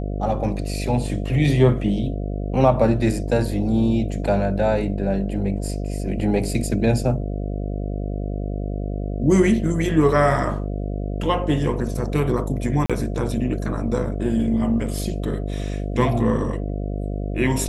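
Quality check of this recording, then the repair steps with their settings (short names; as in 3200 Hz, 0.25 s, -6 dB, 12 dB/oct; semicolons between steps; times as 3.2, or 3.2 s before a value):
buzz 50 Hz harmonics 14 -26 dBFS
12.86–12.9 gap 36 ms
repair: de-hum 50 Hz, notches 14; interpolate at 12.86, 36 ms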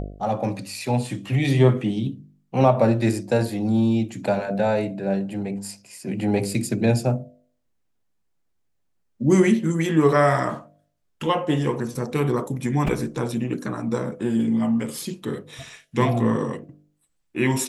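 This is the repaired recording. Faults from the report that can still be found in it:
none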